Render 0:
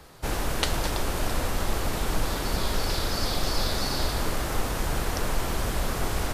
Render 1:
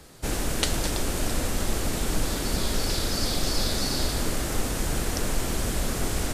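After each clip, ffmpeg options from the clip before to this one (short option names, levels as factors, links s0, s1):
-af "equalizer=f=250:t=o:w=1:g=4,equalizer=f=1000:t=o:w=1:g=-5,equalizer=f=8000:t=o:w=1:g=6"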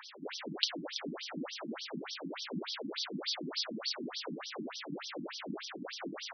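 -af "acompressor=mode=upward:threshold=0.0447:ratio=2.5,highshelf=f=5300:g=4.5,afftfilt=real='re*between(b*sr/1024,220*pow(4400/220,0.5+0.5*sin(2*PI*3.4*pts/sr))/1.41,220*pow(4400/220,0.5+0.5*sin(2*PI*3.4*pts/sr))*1.41)':imag='im*between(b*sr/1024,220*pow(4400/220,0.5+0.5*sin(2*PI*3.4*pts/sr))/1.41,220*pow(4400/220,0.5+0.5*sin(2*PI*3.4*pts/sr))*1.41)':win_size=1024:overlap=0.75,volume=0.708"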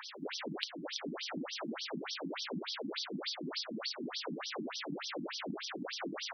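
-af "acompressor=threshold=0.01:ratio=6,volume=1.5"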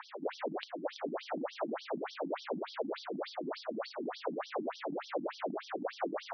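-af "bandpass=f=640:t=q:w=1.5:csg=0,volume=2.99"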